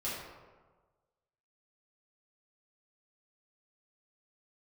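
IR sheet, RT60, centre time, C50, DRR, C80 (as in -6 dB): 1.4 s, 79 ms, 0.0 dB, -9.5 dB, 3.0 dB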